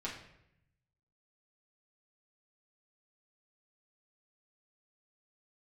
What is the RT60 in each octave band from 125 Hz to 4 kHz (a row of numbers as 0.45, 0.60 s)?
1.4, 1.0, 0.85, 0.70, 0.75, 0.60 s